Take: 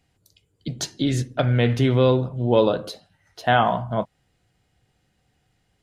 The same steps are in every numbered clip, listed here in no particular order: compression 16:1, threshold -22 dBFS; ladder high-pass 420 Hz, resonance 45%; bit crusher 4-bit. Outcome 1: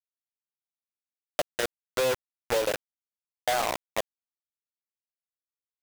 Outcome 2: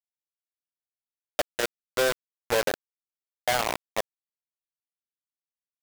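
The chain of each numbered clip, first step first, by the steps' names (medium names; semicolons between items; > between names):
ladder high-pass > bit crusher > compression; ladder high-pass > compression > bit crusher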